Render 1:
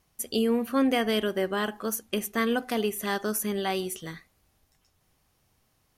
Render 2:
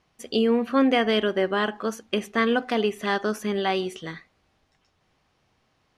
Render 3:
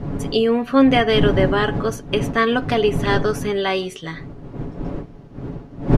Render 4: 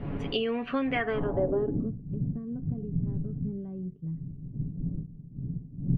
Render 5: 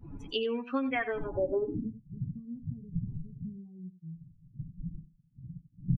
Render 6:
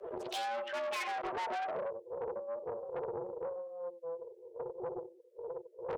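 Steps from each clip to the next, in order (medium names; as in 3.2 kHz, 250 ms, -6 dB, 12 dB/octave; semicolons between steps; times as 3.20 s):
low-pass 4.1 kHz 12 dB/octave; bass shelf 120 Hz -9.5 dB; trim +5 dB
wind noise 250 Hz -28 dBFS; comb 7.1 ms, depth 48%; trim +4 dB
compression 6:1, threshold -18 dBFS, peak gain reduction 10 dB; low-pass sweep 2.7 kHz -> 170 Hz, 0.85–1.97 s; trim -8 dB
expander on every frequency bin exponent 2; delay 91 ms -14.5 dB
valve stage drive 41 dB, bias 0.4; frequency shift +340 Hz; loudspeaker Doppler distortion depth 0.34 ms; trim +6 dB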